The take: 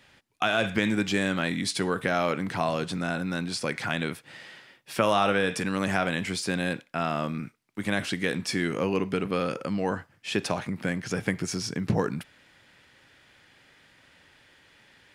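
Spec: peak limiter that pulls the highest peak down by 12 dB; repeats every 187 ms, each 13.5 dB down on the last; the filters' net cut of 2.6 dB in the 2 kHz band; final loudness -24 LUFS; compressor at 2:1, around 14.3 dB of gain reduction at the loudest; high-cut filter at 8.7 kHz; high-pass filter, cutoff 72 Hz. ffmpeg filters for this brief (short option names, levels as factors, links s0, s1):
-af "highpass=72,lowpass=8700,equalizer=f=2000:t=o:g=-3.5,acompressor=threshold=0.00447:ratio=2,alimiter=level_in=2.66:limit=0.0631:level=0:latency=1,volume=0.376,aecho=1:1:187|374:0.211|0.0444,volume=10"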